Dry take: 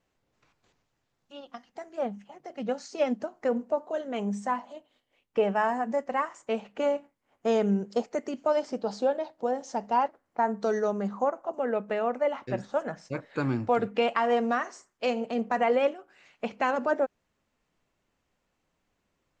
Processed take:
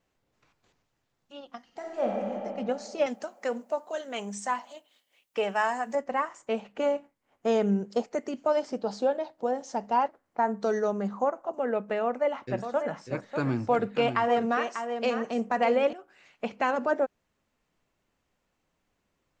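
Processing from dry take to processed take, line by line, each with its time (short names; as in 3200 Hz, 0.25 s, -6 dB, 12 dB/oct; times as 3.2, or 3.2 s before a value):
1.64–2.32 reverb throw, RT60 2.8 s, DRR -2.5 dB
3.06–5.95 tilt +3.5 dB/oct
12.03–15.93 echo 0.593 s -8 dB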